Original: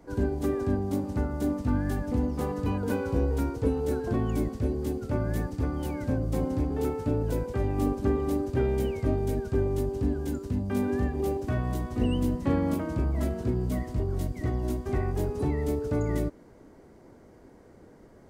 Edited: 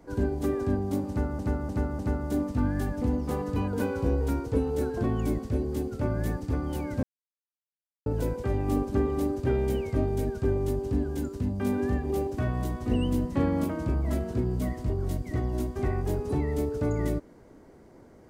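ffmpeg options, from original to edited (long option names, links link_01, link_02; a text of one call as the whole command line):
ffmpeg -i in.wav -filter_complex "[0:a]asplit=6[link_01][link_02][link_03][link_04][link_05][link_06];[link_01]atrim=end=1.392[link_07];[link_02]atrim=start=1.088:end=1.392[link_08];[link_03]atrim=start=1.088:end=1.392[link_09];[link_04]atrim=start=1.088:end=6.13,asetpts=PTS-STARTPTS,afade=type=out:start_time=5.038:duration=0.004:curve=hsin[link_10];[link_05]atrim=start=6.13:end=7.16,asetpts=PTS-STARTPTS,volume=0[link_11];[link_06]atrim=start=7.16,asetpts=PTS-STARTPTS,afade=type=in:duration=0.004:curve=hsin[link_12];[link_07][link_08]acrossfade=duration=0.004:curve1=hsin:curve2=hsin[link_13];[link_13][link_09]acrossfade=duration=0.004:curve1=hsin:curve2=hsin[link_14];[link_10][link_11][link_12]concat=n=3:v=0:a=1[link_15];[link_14][link_15]acrossfade=duration=0.004:curve1=hsin:curve2=hsin" out.wav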